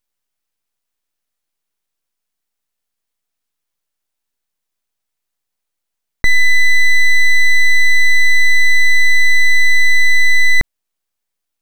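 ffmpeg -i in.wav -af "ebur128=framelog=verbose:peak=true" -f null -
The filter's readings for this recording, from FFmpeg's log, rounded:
Integrated loudness:
  I:         -11.7 LUFS
  Threshold: -21.8 LUFS
Loudness range:
  LRA:         8.1 LU
  Threshold: -33.0 LUFS
  LRA low:   -19.5 LUFS
  LRA high:  -11.4 LUFS
True peak:
  Peak:       -3.6 dBFS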